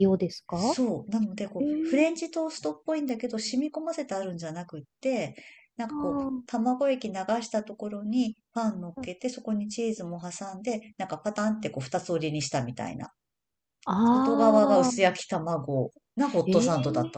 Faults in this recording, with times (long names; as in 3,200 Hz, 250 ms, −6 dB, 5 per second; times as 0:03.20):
0:03.09: click −22 dBFS